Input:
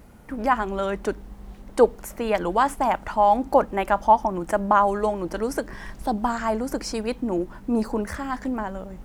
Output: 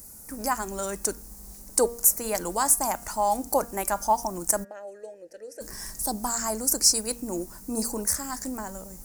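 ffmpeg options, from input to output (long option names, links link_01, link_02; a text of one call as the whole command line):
ffmpeg -i in.wav -filter_complex "[0:a]asplit=3[link_01][link_02][link_03];[link_01]afade=type=out:start_time=4.63:duration=0.02[link_04];[link_02]asplit=3[link_05][link_06][link_07];[link_05]bandpass=frequency=530:width_type=q:width=8,volume=0dB[link_08];[link_06]bandpass=frequency=1840:width_type=q:width=8,volume=-6dB[link_09];[link_07]bandpass=frequency=2480:width_type=q:width=8,volume=-9dB[link_10];[link_08][link_09][link_10]amix=inputs=3:normalize=0,afade=type=in:start_time=4.63:duration=0.02,afade=type=out:start_time=5.6:duration=0.02[link_11];[link_03]afade=type=in:start_time=5.6:duration=0.02[link_12];[link_04][link_11][link_12]amix=inputs=3:normalize=0,bandreject=frequency=235.2:width_type=h:width=4,bandreject=frequency=470.4:width_type=h:width=4,bandreject=frequency=705.6:width_type=h:width=4,bandreject=frequency=940.8:width_type=h:width=4,bandreject=frequency=1176:width_type=h:width=4,bandreject=frequency=1411.2:width_type=h:width=4,bandreject=frequency=1646.4:width_type=h:width=4,bandreject=frequency=1881.6:width_type=h:width=4,bandreject=frequency=2116.8:width_type=h:width=4,bandreject=frequency=2352:width_type=h:width=4,bandreject=frequency=2587.2:width_type=h:width=4,bandreject=frequency=2822.4:width_type=h:width=4,bandreject=frequency=3057.6:width_type=h:width=4,bandreject=frequency=3292.8:width_type=h:width=4,bandreject=frequency=3528:width_type=h:width=4,aexciter=amount=12.3:drive=8.1:freq=5000,volume=-6.5dB" out.wav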